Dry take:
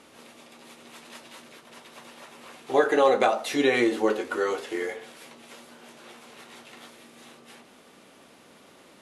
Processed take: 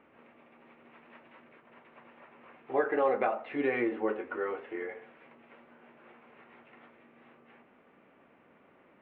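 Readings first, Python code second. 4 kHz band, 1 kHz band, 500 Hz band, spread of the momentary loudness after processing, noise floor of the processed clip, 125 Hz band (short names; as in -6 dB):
under -20 dB, -7.5 dB, -7.5 dB, 12 LU, -63 dBFS, -7.5 dB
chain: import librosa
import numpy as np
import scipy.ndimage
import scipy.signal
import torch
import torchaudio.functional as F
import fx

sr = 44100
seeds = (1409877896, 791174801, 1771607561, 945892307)

y = scipy.signal.sosfilt(scipy.signal.butter(6, 2500.0, 'lowpass', fs=sr, output='sos'), x)
y = F.gain(torch.from_numpy(y), -7.5).numpy()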